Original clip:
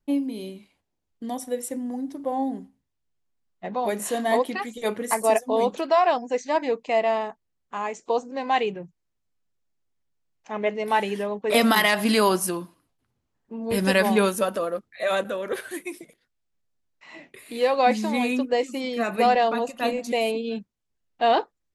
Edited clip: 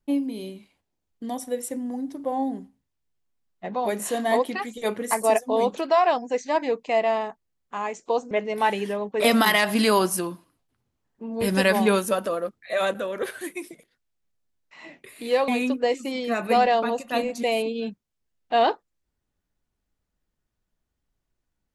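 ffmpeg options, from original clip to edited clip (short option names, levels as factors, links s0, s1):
-filter_complex "[0:a]asplit=3[s0][s1][s2];[s0]atrim=end=8.312[s3];[s1]atrim=start=10.608:end=17.782[s4];[s2]atrim=start=18.168[s5];[s3][s4]acrossfade=d=0.004:c1=hsin:c2=hsin[s6];[s6][s5]acrossfade=d=0.004:c1=hsin:c2=hsin"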